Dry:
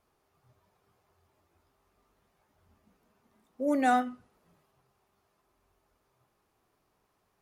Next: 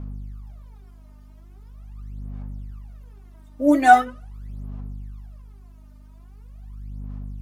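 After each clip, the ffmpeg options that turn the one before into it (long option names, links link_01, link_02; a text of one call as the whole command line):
ffmpeg -i in.wav -af "aeval=exprs='val(0)+0.00316*(sin(2*PI*50*n/s)+sin(2*PI*2*50*n/s)/2+sin(2*PI*3*50*n/s)/3+sin(2*PI*4*50*n/s)/4+sin(2*PI*5*50*n/s)/5)':channel_layout=same,aphaser=in_gain=1:out_gain=1:delay=3.3:decay=0.78:speed=0.42:type=sinusoidal,volume=5.5dB" out.wav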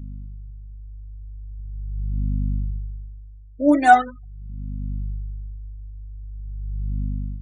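ffmpeg -i in.wav -af "afftfilt=real='re*gte(hypot(re,im),0.0224)':imag='im*gte(hypot(re,im),0.0224)':win_size=1024:overlap=0.75,dynaudnorm=framelen=320:gausssize=5:maxgain=12dB,volume=-1dB" out.wav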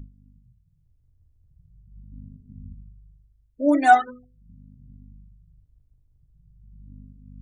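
ffmpeg -i in.wav -af "bandreject=frequency=50:width_type=h:width=6,bandreject=frequency=100:width_type=h:width=6,bandreject=frequency=150:width_type=h:width=6,bandreject=frequency=200:width_type=h:width=6,bandreject=frequency=250:width_type=h:width=6,bandreject=frequency=300:width_type=h:width=6,bandreject=frequency=350:width_type=h:width=6,bandreject=frequency=400:width_type=h:width=6,bandreject=frequency=450:width_type=h:width=6,bandreject=frequency=500:width_type=h:width=6,volume=-2dB" out.wav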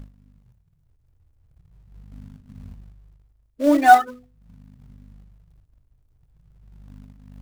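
ffmpeg -i in.wav -filter_complex "[0:a]equalizer=frequency=750:width=0.35:gain=3,asplit=2[link_01][link_02];[link_02]acrusher=bits=2:mode=log:mix=0:aa=0.000001,volume=-6dB[link_03];[link_01][link_03]amix=inputs=2:normalize=0,volume=-3.5dB" out.wav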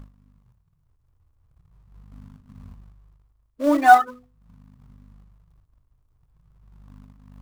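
ffmpeg -i in.wav -af "equalizer=frequency=1100:width=2.3:gain=9.5,volume=-3dB" out.wav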